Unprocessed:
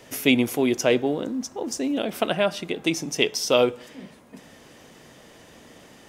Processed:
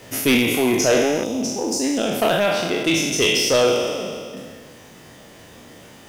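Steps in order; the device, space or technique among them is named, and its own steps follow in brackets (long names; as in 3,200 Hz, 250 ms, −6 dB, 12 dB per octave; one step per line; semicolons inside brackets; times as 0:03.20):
peak hold with a decay on every bin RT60 2.08 s
0:01.24–0:01.84: parametric band 1,700 Hz −7.5 dB 0.85 octaves
reverb reduction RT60 0.71 s
open-reel tape (soft clipping −14 dBFS, distortion −13 dB; parametric band 100 Hz +5 dB 0.95 octaves; white noise bed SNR 37 dB)
level +3.5 dB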